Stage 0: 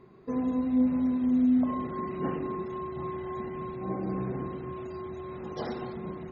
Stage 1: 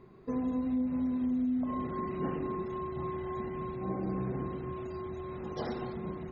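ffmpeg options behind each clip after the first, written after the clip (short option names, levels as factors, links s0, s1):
-af "lowshelf=f=63:g=9.5,acompressor=threshold=0.0447:ratio=6,volume=0.841"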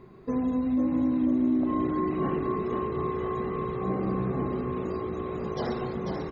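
-filter_complex "[0:a]asplit=6[s0][s1][s2][s3][s4][s5];[s1]adelay=493,afreqshift=57,volume=0.531[s6];[s2]adelay=986,afreqshift=114,volume=0.219[s7];[s3]adelay=1479,afreqshift=171,volume=0.0891[s8];[s4]adelay=1972,afreqshift=228,volume=0.0367[s9];[s5]adelay=2465,afreqshift=285,volume=0.015[s10];[s0][s6][s7][s8][s9][s10]amix=inputs=6:normalize=0,volume=1.78"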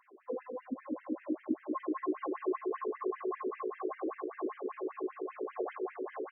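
-af "bandreject=f=48.39:t=h:w=4,bandreject=f=96.78:t=h:w=4,bandreject=f=145.17:t=h:w=4,bandreject=f=193.56:t=h:w=4,bandreject=f=241.95:t=h:w=4,bandreject=f=290.34:t=h:w=4,bandreject=f=338.73:t=h:w=4,bandreject=f=387.12:t=h:w=4,bandreject=f=435.51:t=h:w=4,bandreject=f=483.9:t=h:w=4,bandreject=f=532.29:t=h:w=4,bandreject=f=580.68:t=h:w=4,afftfilt=real='re*between(b*sr/1024,360*pow(2300/360,0.5+0.5*sin(2*PI*5.1*pts/sr))/1.41,360*pow(2300/360,0.5+0.5*sin(2*PI*5.1*pts/sr))*1.41)':imag='im*between(b*sr/1024,360*pow(2300/360,0.5+0.5*sin(2*PI*5.1*pts/sr))/1.41,360*pow(2300/360,0.5+0.5*sin(2*PI*5.1*pts/sr))*1.41)':win_size=1024:overlap=0.75"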